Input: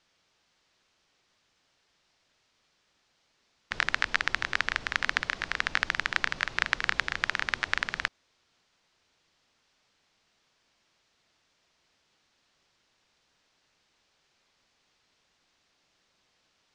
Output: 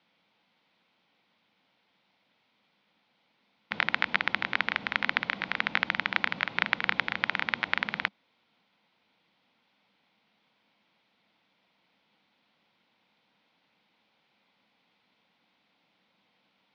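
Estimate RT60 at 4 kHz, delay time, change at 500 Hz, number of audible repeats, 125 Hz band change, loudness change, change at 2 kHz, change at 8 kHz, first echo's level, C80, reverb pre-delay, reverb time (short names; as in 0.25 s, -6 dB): none, none, +1.5 dB, none, 0.0 dB, +0.5 dB, 0.0 dB, under -15 dB, none, none, none, none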